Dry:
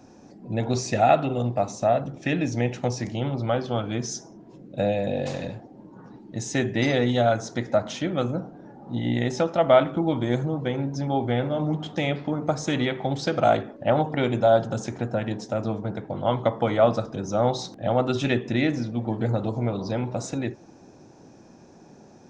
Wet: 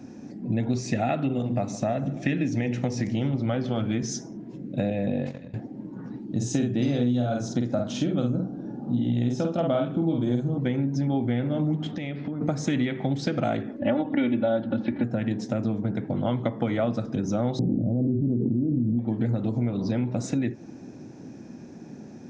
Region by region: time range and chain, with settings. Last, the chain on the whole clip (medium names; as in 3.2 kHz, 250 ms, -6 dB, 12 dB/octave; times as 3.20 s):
1.31–4.03 s: hum notches 60/120/180/240/300/360/420/480/540 Hz + feedback delay 146 ms, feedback 51%, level -22 dB
4.90–5.54 s: treble shelf 4.4 kHz -10 dB + gate -29 dBFS, range -18 dB
6.25–10.58 s: peaking EQ 2 kHz -15 dB 0.46 oct + band-stop 910 Hz, Q 26 + doubling 49 ms -3.5 dB
11.91–12.41 s: low-pass 5.9 kHz 24 dB/octave + compression 4:1, threshold -37 dBFS
13.79–15.04 s: steep low-pass 4 kHz 48 dB/octave + comb 3.5 ms, depth 94%
17.59–18.99 s: Gaussian low-pass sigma 19 samples + level flattener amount 100%
whole clip: graphic EQ 125/250/1000/2000 Hz +6/+10/-4/+6 dB; compression 4:1, threshold -23 dBFS